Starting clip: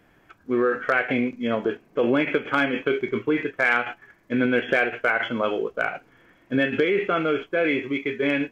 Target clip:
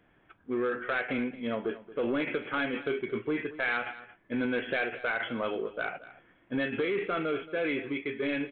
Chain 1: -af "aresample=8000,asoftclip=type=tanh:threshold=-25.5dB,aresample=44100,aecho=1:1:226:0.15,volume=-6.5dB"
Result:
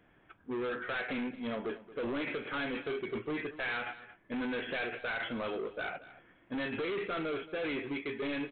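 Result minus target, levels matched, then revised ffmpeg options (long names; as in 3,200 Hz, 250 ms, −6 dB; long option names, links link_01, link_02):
soft clipping: distortion +9 dB
-af "aresample=8000,asoftclip=type=tanh:threshold=-15.5dB,aresample=44100,aecho=1:1:226:0.15,volume=-6.5dB"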